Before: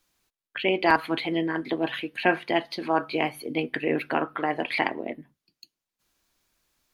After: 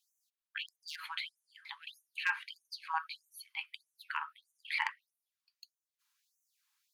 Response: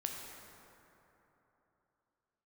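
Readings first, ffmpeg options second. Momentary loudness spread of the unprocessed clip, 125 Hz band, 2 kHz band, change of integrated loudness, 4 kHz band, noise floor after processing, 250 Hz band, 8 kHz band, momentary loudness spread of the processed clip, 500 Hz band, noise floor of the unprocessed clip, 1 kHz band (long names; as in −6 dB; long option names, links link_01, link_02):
7 LU, below −40 dB, −9.5 dB, −13.0 dB, −8.5 dB, below −85 dBFS, below −40 dB, −4.0 dB, 14 LU, below −40 dB, below −85 dBFS, −14.5 dB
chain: -af "volume=8.5dB,asoftclip=hard,volume=-8.5dB,afftfilt=real='re*gte(b*sr/1024,800*pow(5900/800,0.5+0.5*sin(2*PI*1.6*pts/sr)))':imag='im*gte(b*sr/1024,800*pow(5900/800,0.5+0.5*sin(2*PI*1.6*pts/sr)))':win_size=1024:overlap=0.75,volume=-6dB"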